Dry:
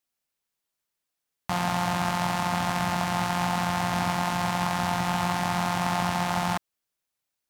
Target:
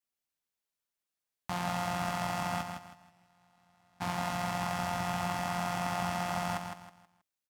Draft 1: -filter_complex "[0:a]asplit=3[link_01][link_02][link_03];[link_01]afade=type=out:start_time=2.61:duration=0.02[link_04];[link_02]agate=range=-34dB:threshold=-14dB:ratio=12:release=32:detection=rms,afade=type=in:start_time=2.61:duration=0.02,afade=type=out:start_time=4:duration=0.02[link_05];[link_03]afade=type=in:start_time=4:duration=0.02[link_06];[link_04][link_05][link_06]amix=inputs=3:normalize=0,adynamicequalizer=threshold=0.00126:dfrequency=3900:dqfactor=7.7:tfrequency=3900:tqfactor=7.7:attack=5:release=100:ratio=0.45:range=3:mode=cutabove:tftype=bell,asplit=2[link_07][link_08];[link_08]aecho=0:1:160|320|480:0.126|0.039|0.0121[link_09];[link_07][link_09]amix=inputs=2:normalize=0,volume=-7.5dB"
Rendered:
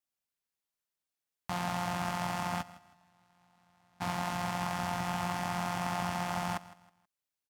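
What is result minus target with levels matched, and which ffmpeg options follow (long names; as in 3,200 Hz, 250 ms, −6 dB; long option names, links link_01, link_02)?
echo-to-direct −11.5 dB
-filter_complex "[0:a]asplit=3[link_01][link_02][link_03];[link_01]afade=type=out:start_time=2.61:duration=0.02[link_04];[link_02]agate=range=-34dB:threshold=-14dB:ratio=12:release=32:detection=rms,afade=type=in:start_time=2.61:duration=0.02,afade=type=out:start_time=4:duration=0.02[link_05];[link_03]afade=type=in:start_time=4:duration=0.02[link_06];[link_04][link_05][link_06]amix=inputs=3:normalize=0,adynamicequalizer=threshold=0.00126:dfrequency=3900:dqfactor=7.7:tfrequency=3900:tqfactor=7.7:attack=5:release=100:ratio=0.45:range=3:mode=cutabove:tftype=bell,asplit=2[link_07][link_08];[link_08]aecho=0:1:160|320|480|640:0.473|0.147|0.0455|0.0141[link_09];[link_07][link_09]amix=inputs=2:normalize=0,volume=-7.5dB"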